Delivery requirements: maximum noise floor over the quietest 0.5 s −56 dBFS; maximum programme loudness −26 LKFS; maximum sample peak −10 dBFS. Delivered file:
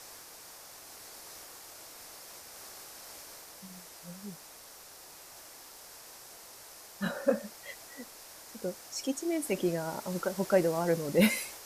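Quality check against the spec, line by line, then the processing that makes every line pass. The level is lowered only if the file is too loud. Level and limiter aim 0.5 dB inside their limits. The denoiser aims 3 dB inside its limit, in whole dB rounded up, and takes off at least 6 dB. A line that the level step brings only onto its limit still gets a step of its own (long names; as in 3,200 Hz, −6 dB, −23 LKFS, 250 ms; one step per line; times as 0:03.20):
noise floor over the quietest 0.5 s −51 dBFS: out of spec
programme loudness −32.5 LKFS: in spec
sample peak −11.0 dBFS: in spec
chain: broadband denoise 8 dB, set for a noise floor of −51 dBFS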